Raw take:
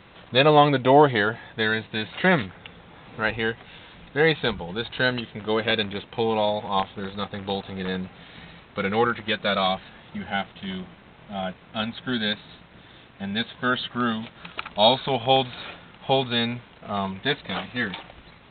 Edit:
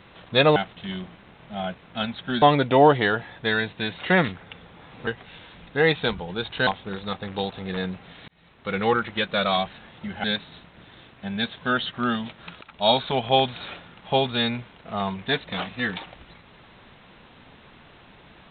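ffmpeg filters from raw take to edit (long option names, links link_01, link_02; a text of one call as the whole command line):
ffmpeg -i in.wav -filter_complex "[0:a]asplit=8[link_01][link_02][link_03][link_04][link_05][link_06][link_07][link_08];[link_01]atrim=end=0.562[link_09];[link_02]atrim=start=10.348:end=12.212[link_10];[link_03]atrim=start=0.558:end=3.212[link_11];[link_04]atrim=start=3.468:end=5.072[link_12];[link_05]atrim=start=6.778:end=8.39,asetpts=PTS-STARTPTS,afade=type=out:start_time=1.608:duration=0.004:curve=hsin[link_13];[link_06]atrim=start=8.39:end=10.352,asetpts=PTS-STARTPTS,afade=type=in:duration=0.53[link_14];[link_07]atrim=start=12.208:end=14.58,asetpts=PTS-STARTPTS,afade=type=out:start_time=2.368:duration=0.004:curve=hsin:silence=0.125893[link_15];[link_08]atrim=start=14.58,asetpts=PTS-STARTPTS,afade=type=in:duration=0.5:curve=qsin:silence=0.125893[link_16];[link_09][link_10]acrossfade=duration=0.004:curve1=hsin:curve2=hsin[link_17];[link_17][link_11]acrossfade=duration=0.004:curve1=hsin:curve2=hsin[link_18];[link_18][link_12]acrossfade=duration=0.004:curve1=hsin:curve2=hsin[link_19];[link_13][link_14]concat=n=2:v=0:a=1[link_20];[link_19][link_20]acrossfade=duration=0.004:curve1=hsin:curve2=hsin[link_21];[link_15][link_16]concat=n=2:v=0:a=1[link_22];[link_21][link_22]acrossfade=duration=0.004:curve1=hsin:curve2=hsin" out.wav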